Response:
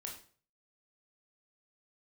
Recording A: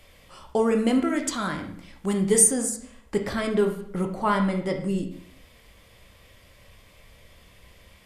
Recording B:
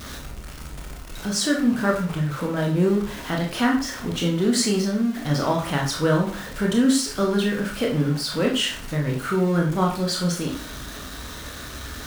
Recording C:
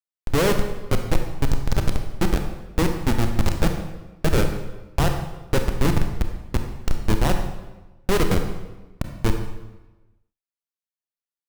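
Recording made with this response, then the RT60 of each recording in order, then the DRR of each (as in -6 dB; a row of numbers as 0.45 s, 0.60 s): B; 0.65 s, 0.45 s, 1.1 s; 3.5 dB, -0.5 dB, 5.0 dB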